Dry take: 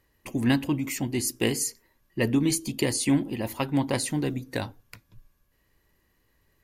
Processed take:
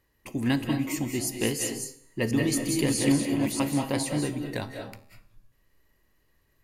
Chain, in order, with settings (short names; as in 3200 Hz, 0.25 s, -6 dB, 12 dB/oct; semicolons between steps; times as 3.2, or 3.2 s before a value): 1.67–3.73 reverse delay 0.321 s, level -3 dB; resonator 73 Hz, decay 0.77 s, harmonics all, mix 50%; reverb RT60 0.45 s, pre-delay 0.154 s, DRR 4.5 dB; gain +2.5 dB